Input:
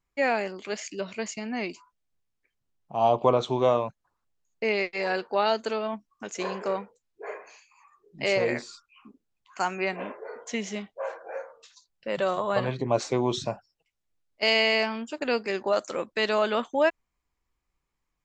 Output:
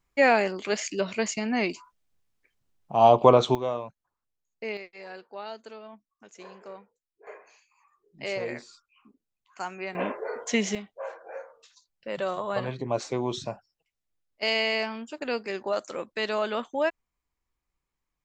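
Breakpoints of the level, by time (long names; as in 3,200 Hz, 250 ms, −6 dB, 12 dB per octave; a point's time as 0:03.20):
+5 dB
from 0:03.55 −7.5 dB
from 0:04.77 −14.5 dB
from 0:07.27 −7 dB
from 0:09.95 +6 dB
from 0:10.75 −3.5 dB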